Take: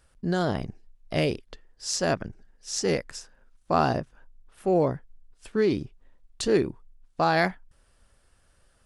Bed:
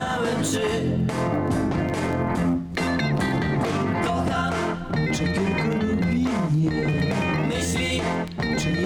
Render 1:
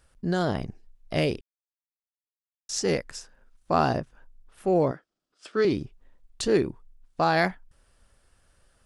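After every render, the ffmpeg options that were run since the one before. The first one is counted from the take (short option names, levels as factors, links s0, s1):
-filter_complex "[0:a]asettb=1/sr,asplit=3[s0][s1][s2];[s0]atrim=end=4.914[s3];[s1]atrim=start=4.91:end=5.65,asetpts=PTS-STARTPTS,afade=t=in:d=0.004:c=qsin,afade=t=out:st=0.736:d=0.004:c=qsin,highpass=280,equalizer=f=320:t=q:w=4:g=5,equalizer=f=610:t=q:w=4:g=5,equalizer=f=920:t=q:w=4:g=-4,equalizer=f=1300:t=q:w=4:g=10,equalizer=f=3300:t=q:w=4:g=5,equalizer=f=5000:t=q:w=4:g=8,lowpass=f=8900:w=0.5412,lowpass=f=8900:w=1.3066[s4];[s2]atrim=start=5.646[s5];[s3][s4]acrossfade=d=0.004:c1=hsin:c2=qsin[s6];[s6][s5]acrossfade=d=0.004:c1=qsin:c2=hsin,asplit=3[s7][s8][s9];[s7]atrim=end=1.41,asetpts=PTS-STARTPTS,afade=t=out:st=1.406:d=0.004:c=hsin[s10];[s8]atrim=start=1.41:end=2.69,asetpts=PTS-STARTPTS,volume=0[s11];[s9]atrim=start=2.69,asetpts=PTS-STARTPTS,afade=t=in:d=0.004:c=hsin[s12];[s10][s11][s12]concat=n=3:v=0:a=1"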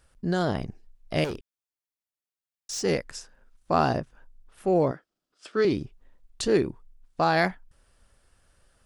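-filter_complex "[0:a]asettb=1/sr,asplit=3[s0][s1][s2];[s0]atrim=end=1.244[s3];[s1]atrim=start=1.24:end=2.84,asetpts=PTS-STARTPTS,afade=t=in:d=0.004:c=qsin,afade=t=out:st=1.596:d=0.004:c=qsin,asoftclip=type=hard:threshold=0.0355[s4];[s2]atrim=start=2.836[s5];[s3][s4]acrossfade=d=0.004:c1=hsin:c2=qsin[s6];[s6][s5]acrossfade=d=0.004:c1=qsin:c2=hsin"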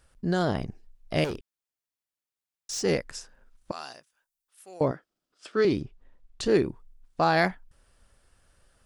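-filter_complex "[0:a]asettb=1/sr,asplit=3[s0][s1][s2];[s0]atrim=end=3.714[s3];[s1]atrim=start=3.71:end=4.81,asetpts=PTS-STARTPTS,afade=t=in:d=0.004:c=qsin,afade=t=out:st=1.096:d=0.004:c=qsin,aderivative[s4];[s2]atrim=start=4.806[s5];[s3][s4]acrossfade=d=0.004:c1=hsin:c2=qsin[s6];[s6][s5]acrossfade=d=0.004:c1=qsin:c2=hsin,asettb=1/sr,asplit=3[s7][s8][s9];[s7]atrim=end=5.814[s10];[s8]atrim=start=5.81:end=6.46,asetpts=PTS-STARTPTS,afade=t=in:d=0.004:c=qsin,afade=t=out:st=0.646:d=0.004:c=qsin,highshelf=f=7700:g=-12[s11];[s9]atrim=start=6.456[s12];[s10][s11]acrossfade=d=0.004:c1=hsin:c2=qsin[s13];[s13][s12]acrossfade=d=0.004:c1=qsin:c2=hsin"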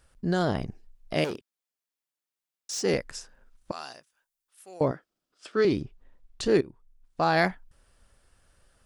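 -filter_complex "[0:a]asettb=1/sr,asplit=3[s0][s1][s2];[s0]atrim=end=1.144[s3];[s1]atrim=start=1.14:end=2.94,asetpts=PTS-STARTPTS,afade=t=in:d=0.004:c=qsin,afade=t=out:st=1.796:d=0.004:c=qsin,highpass=160[s4];[s2]atrim=start=2.936[s5];[s3][s4]acrossfade=d=0.004:c1=hsin:c2=qsin[s6];[s6][s5]acrossfade=d=0.004:c1=qsin:c2=hsin,asplit=2[s7][s8];[s7]atrim=end=6.61,asetpts=PTS-STARTPTS,afade=t=out:st=6.606:d=0.004:c=hsin:silence=0.16788[s9];[s8]atrim=start=6.61,asetpts=PTS-STARTPTS,afade=t=in:d=0.78:silence=0.16788[s10];[s9][s10]concat=n=2:v=0:a=1"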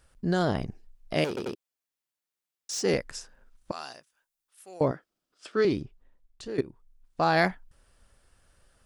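-filter_complex "[0:a]asplit=5[s0][s1][s2][s3][s4];[s0]atrim=end=1.372[s5];[s1]atrim=start=1.278:end=1.372[s6];[s2]atrim=start=1.278:end=1.372[s7];[s3]atrim=start=1.548:end=6.58,asetpts=PTS-STARTPTS,afade=t=out:st=3.942:d=1.09:silence=0.16788[s8];[s4]atrim=start=6.58,asetpts=PTS-STARTPTS,afade=t=in:d=0.004:c=hsin:silence=0.16788[s9];[s5][s6]acrossfade=d=0.004:c1=hsin:c2=hsin[s10];[s10][s7]acrossfade=d=0.004:c1=hsin:c2=hsin[s11];[s8][s9]concat=n=2:v=0:a=1[s12];[s11][s12]acrossfade=d=0.004:c1=hsin:c2=hsin"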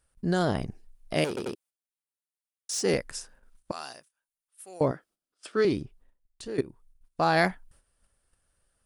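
-af "agate=range=0.282:threshold=0.00158:ratio=16:detection=peak,equalizer=f=9500:t=o:w=0.38:g=10"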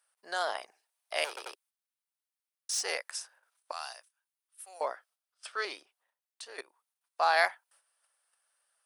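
-af "highpass=f=690:w=0.5412,highpass=f=690:w=1.3066,bandreject=f=7100:w=13"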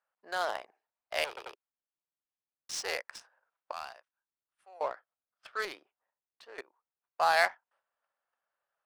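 -af "adynamicsmooth=sensitivity=7.5:basefreq=1600"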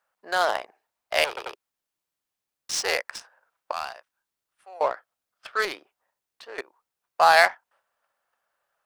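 -af "volume=2.99,alimiter=limit=0.708:level=0:latency=1"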